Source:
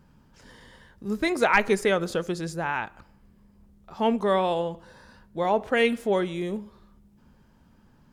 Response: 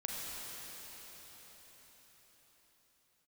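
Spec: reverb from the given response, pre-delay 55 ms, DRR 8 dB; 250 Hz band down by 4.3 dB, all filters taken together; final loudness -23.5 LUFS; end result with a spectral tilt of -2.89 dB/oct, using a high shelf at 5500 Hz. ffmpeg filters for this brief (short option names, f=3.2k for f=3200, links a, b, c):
-filter_complex "[0:a]equalizer=f=250:t=o:g=-6,highshelf=f=5.5k:g=-3.5,asplit=2[a][b];[1:a]atrim=start_sample=2205,adelay=55[c];[b][c]afir=irnorm=-1:irlink=0,volume=-10.5dB[d];[a][d]amix=inputs=2:normalize=0,volume=3dB"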